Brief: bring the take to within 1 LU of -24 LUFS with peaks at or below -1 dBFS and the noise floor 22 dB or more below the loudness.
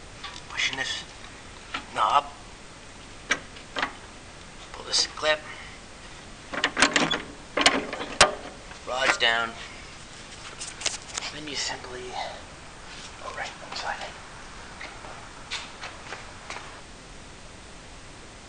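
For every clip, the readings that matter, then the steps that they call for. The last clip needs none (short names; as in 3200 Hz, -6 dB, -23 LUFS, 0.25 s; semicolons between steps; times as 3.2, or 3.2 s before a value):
noise floor -45 dBFS; noise floor target -49 dBFS; loudness -26.5 LUFS; peak -2.5 dBFS; loudness target -24.0 LUFS
-> noise print and reduce 6 dB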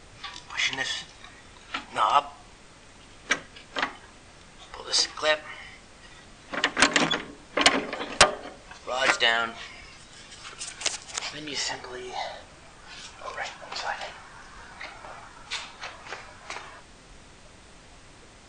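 noise floor -51 dBFS; loudness -26.5 LUFS; peak -2.5 dBFS; loudness target -24.0 LUFS
-> gain +2.5 dB; limiter -1 dBFS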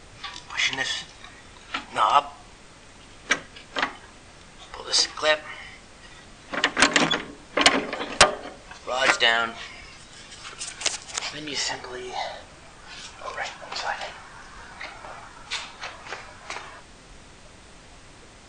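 loudness -24.0 LUFS; peak -1.0 dBFS; noise floor -48 dBFS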